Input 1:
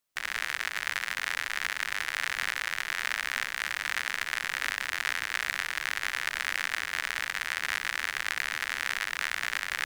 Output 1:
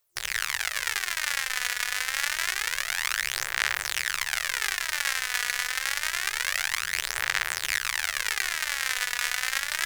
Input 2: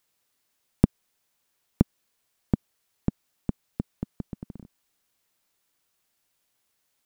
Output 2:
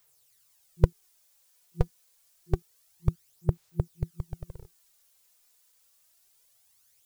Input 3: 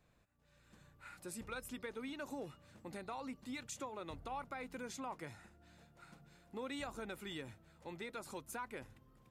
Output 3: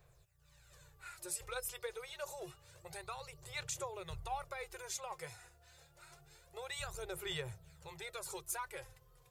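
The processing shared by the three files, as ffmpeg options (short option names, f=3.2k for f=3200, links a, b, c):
-af "afftfilt=real='re*(1-between(b*sr/4096,170,350))':imag='im*(1-between(b*sr/4096,170,350))':win_size=4096:overlap=0.75,aphaser=in_gain=1:out_gain=1:delay=4.1:decay=0.53:speed=0.27:type=sinusoidal,bass=f=250:g=2,treble=f=4k:g=9"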